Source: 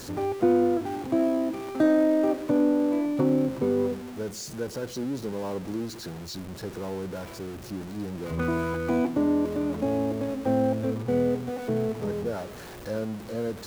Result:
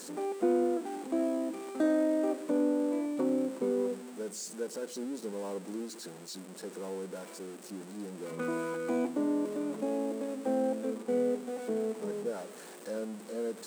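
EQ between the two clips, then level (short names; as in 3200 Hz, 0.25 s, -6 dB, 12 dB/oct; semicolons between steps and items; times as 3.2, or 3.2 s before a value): brick-wall FIR high-pass 170 Hz; bell 470 Hz +4 dB 0.31 oct; bell 8300 Hz +13 dB 0.39 oct; -7.0 dB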